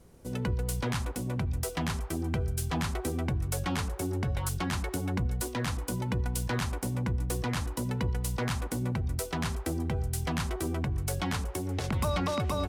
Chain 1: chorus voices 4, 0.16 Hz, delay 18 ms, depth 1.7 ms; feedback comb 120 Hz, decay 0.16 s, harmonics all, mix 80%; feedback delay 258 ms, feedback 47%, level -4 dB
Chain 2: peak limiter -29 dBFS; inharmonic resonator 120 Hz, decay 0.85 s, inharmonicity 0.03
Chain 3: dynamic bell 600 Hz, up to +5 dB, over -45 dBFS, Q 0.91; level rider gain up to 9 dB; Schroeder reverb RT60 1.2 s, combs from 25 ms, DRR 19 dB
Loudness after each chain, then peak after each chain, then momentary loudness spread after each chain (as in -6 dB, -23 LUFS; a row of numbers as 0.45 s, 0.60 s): -38.0 LUFS, -49.0 LUFS, -22.0 LUFS; -22.5 dBFS, -34.5 dBFS, -7.5 dBFS; 4 LU, 11 LU, 2 LU